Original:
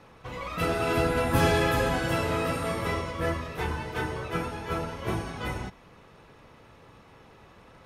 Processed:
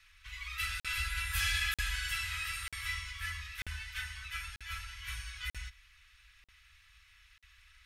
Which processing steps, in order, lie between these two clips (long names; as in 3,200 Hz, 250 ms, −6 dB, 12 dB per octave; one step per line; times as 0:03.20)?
inverse Chebyshev band-stop filter 220–510 Hz, stop band 80 dB
regular buffer underruns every 0.94 s, samples 2,048, zero, from 0:00.80